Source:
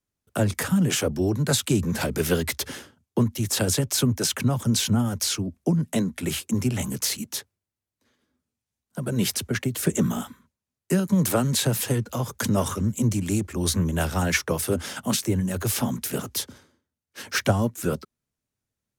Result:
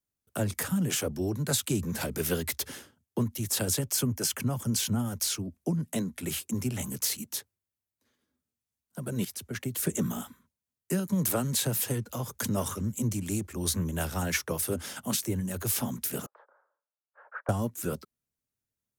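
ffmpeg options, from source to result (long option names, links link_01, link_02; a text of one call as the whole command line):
ffmpeg -i in.wav -filter_complex "[0:a]asettb=1/sr,asplit=3[link_01][link_02][link_03];[link_01]atrim=end=3.914[link_04];[link_02]atrim=start=3.91:end=4.8,asetpts=PTS-STARTPTS,afade=type=in:duration=0.004:curve=qsin,afade=type=out:start_time=0.886:duration=0.004:curve=qsin,bandreject=frequency=3800:width=7[link_05];[link_03]atrim=start=4.796[link_06];[link_04][link_05]acrossfade=duration=0.004:curve1=hsin:curve2=qsin[link_07];[link_07][link_06]acrossfade=duration=0.004:curve1=qsin:curve2=hsin,asettb=1/sr,asplit=3[link_08][link_09][link_10];[link_08]atrim=end=16.264[link_11];[link_09]atrim=start=16.26:end=17.49,asetpts=PTS-STARTPTS,afade=type=in:duration=0.004:curve=qsin,afade=type=out:start_time=1.226:duration=0.004:curve=qsin,asuperpass=centerf=890:order=8:qfactor=0.94[link_12];[link_10]atrim=start=17.486[link_13];[link_11][link_12]acrossfade=duration=0.004:curve1=hsin:curve2=qsin[link_14];[link_14][link_13]acrossfade=duration=0.004:curve1=qsin:curve2=hsin,asplit=2[link_15][link_16];[link_15]atrim=end=9.25,asetpts=PTS-STARTPTS,afade=type=out:start_time=9.246:duration=0.004:curve=hsin:silence=0.188365[link_17];[link_16]atrim=start=9.25,asetpts=PTS-STARTPTS,afade=type=in:duration=0.46:silence=0.188365[link_18];[link_17][link_18]concat=n=2:v=0:a=1,highshelf=frequency=10000:gain=10.5,volume=-7dB" out.wav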